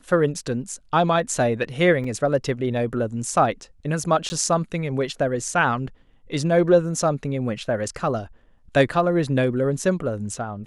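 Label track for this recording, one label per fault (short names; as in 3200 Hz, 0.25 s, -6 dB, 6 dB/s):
2.040000	2.040000	gap 3.8 ms
4.290000	4.300000	gap 10 ms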